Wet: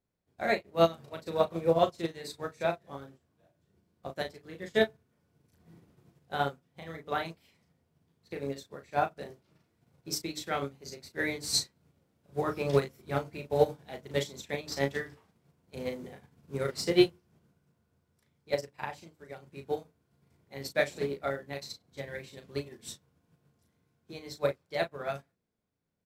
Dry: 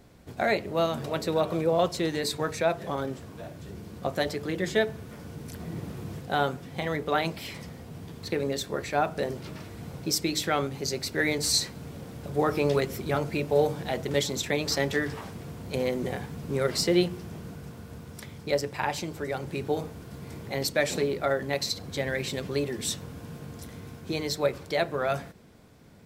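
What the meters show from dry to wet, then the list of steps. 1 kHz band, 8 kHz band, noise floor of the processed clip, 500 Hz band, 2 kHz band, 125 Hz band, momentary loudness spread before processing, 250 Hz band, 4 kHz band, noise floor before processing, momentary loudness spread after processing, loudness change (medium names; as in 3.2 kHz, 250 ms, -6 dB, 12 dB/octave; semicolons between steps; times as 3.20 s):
-4.0 dB, -8.0 dB, -76 dBFS, -4.0 dB, -5.5 dB, -7.0 dB, 16 LU, -5.5 dB, -6.5 dB, -46 dBFS, 18 LU, -4.0 dB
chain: hum notches 60/120/180/240/300 Hz; doubling 36 ms -4 dB; upward expansion 2.5:1, over -40 dBFS; trim +2 dB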